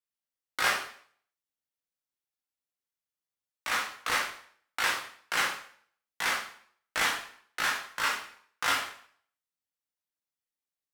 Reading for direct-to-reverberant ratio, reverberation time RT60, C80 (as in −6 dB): −3.0 dB, 0.55 s, 9.5 dB